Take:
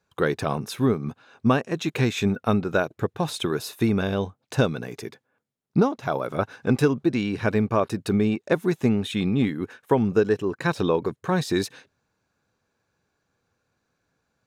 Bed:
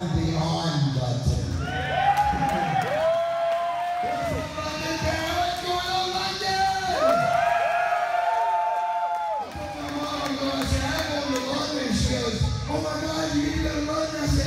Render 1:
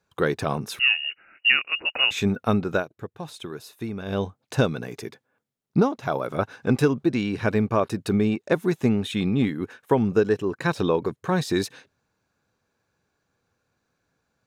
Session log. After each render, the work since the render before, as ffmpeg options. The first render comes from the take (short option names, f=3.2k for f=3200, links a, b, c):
-filter_complex "[0:a]asettb=1/sr,asplit=3[a][b][c];[a]atrim=end=0.794[d];[b]atrim=start=0.79:end=2.11,asetpts=PTS-STARTPTS,afade=t=in:d=0.004:c=qsin,afade=t=out:st=1.316:d=0.004:c=qsin,lowpass=f=2.6k:t=q:w=0.5098,lowpass=f=2.6k:t=q:w=0.6013,lowpass=f=2.6k:t=q:w=0.9,lowpass=f=2.6k:t=q:w=2.563,afreqshift=-3000[e];[c]atrim=start=2.106[f];[d][e]acrossfade=d=0.004:c1=hsin:c2=qsin[g];[g][f]acrossfade=d=0.004:c1=qsin:c2=hsin,asplit=3[h][i][j];[h]atrim=end=2.85,asetpts=PTS-STARTPTS,afade=t=out:st=2.71:d=0.14:c=qsin:silence=0.316228[k];[i]atrim=start=2.85:end=4.05,asetpts=PTS-STARTPTS,volume=-10dB[l];[j]atrim=start=4.05,asetpts=PTS-STARTPTS,afade=t=in:d=0.14:c=qsin:silence=0.316228[m];[k][l][m]concat=n=3:v=0:a=1"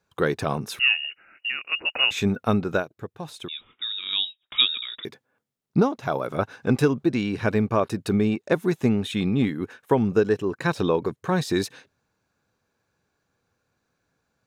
-filter_complex "[0:a]asettb=1/sr,asplit=3[a][b][c];[a]atrim=end=1.054[d];[b]atrim=start=1.05:end=1.65,asetpts=PTS-STARTPTS,afade=t=in:d=0.004:c=qsin,afade=t=out:st=0.596:d=0.004:c=qsin,acompressor=threshold=-32dB:ratio=2:attack=3.2:release=140:knee=1:detection=peak[e];[c]atrim=start=1.646[f];[d][e]acrossfade=d=0.004:c1=hsin:c2=qsin[g];[g][f]acrossfade=d=0.004:c1=qsin:c2=hsin,asettb=1/sr,asplit=3[h][i][j];[h]atrim=end=3.484[k];[i]atrim=start=3.48:end=5.05,asetpts=PTS-STARTPTS,afade=t=in:d=0.004:c=qsin,afade=t=out:st=1.566:d=0.004:c=qsin,lowpass=f=3.3k:t=q:w=0.5098,lowpass=f=3.3k:t=q:w=0.6013,lowpass=f=3.3k:t=q:w=0.9,lowpass=f=3.3k:t=q:w=2.563,afreqshift=-3900[l];[j]atrim=start=5.046[m];[k][l]acrossfade=d=0.004:c1=hsin:c2=qsin[n];[n][m]acrossfade=d=0.004:c1=qsin:c2=hsin"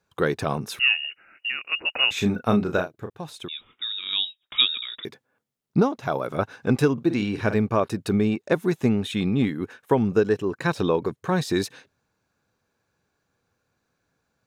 -filter_complex "[0:a]asettb=1/sr,asplit=3[a][b][c];[a]atrim=end=2.134[d];[b]atrim=start=2.13:end=3.1,asetpts=PTS-STARTPTS,afade=t=in:d=0.004:c=qsin,afade=t=out:st=0.966:d=0.004:c=qsin,asplit=2[e][f];[f]adelay=34,volume=-6.5dB[g];[e][g]amix=inputs=2:normalize=0,atrim=end_sample=42777[h];[c]atrim=start=3.096[i];[d][h]acrossfade=d=0.004:c1=hsin:c2=qsin[j];[j][i]acrossfade=d=0.004:c1=qsin:c2=hsin,asettb=1/sr,asplit=3[k][l][m];[k]atrim=end=6.934[n];[l]atrim=start=6.93:end=7.54,asetpts=PTS-STARTPTS,afade=t=in:d=0.004:c=qsin,afade=t=out:st=0.606:d=0.004:c=qsin,asplit=2[o][p];[p]adelay=48,volume=-11dB[q];[o][q]amix=inputs=2:normalize=0,atrim=end_sample=26901[r];[m]atrim=start=7.536[s];[n][r]acrossfade=d=0.004:c1=hsin:c2=qsin[t];[t][s]acrossfade=d=0.004:c1=qsin:c2=hsin"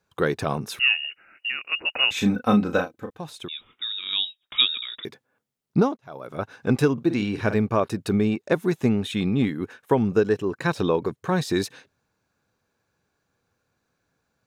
-filter_complex "[0:a]asettb=1/sr,asplit=3[a][b][c];[a]atrim=end=2.144[d];[b]atrim=start=2.14:end=3.18,asetpts=PTS-STARTPTS,afade=t=in:d=0.004:c=qsin,afade=t=out:st=1.036:d=0.004:c=qsin,aecho=1:1:3.9:0.65,atrim=end_sample=45864[e];[c]atrim=start=3.176[f];[d][e]acrossfade=d=0.004:c1=hsin:c2=qsin[g];[g][f]acrossfade=d=0.004:c1=qsin:c2=hsin,asplit=2[h][i];[h]atrim=end=5.97,asetpts=PTS-STARTPTS,afade=t=out:st=5.966:d=0.004:c=hsin[j];[i]atrim=start=5.97,asetpts=PTS-STARTPTS,afade=t=in:d=0.74[k];[j][k]concat=n=2:v=0:a=1"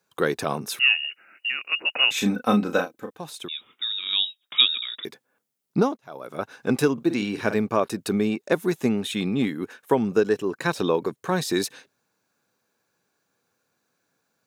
-af "highpass=180,highshelf=f=6.3k:g=8.5"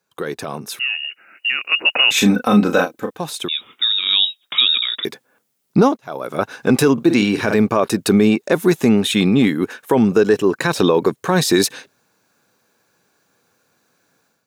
-af "alimiter=limit=-15dB:level=0:latency=1:release=19,dynaudnorm=f=950:g=3:m=11.5dB"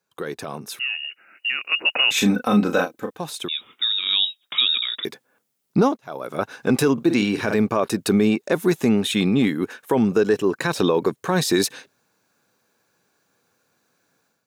-af "volume=-4.5dB"